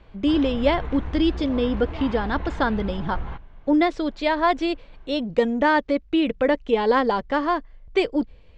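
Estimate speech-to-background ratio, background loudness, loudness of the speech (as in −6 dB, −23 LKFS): 11.0 dB, −34.0 LKFS, −23.0 LKFS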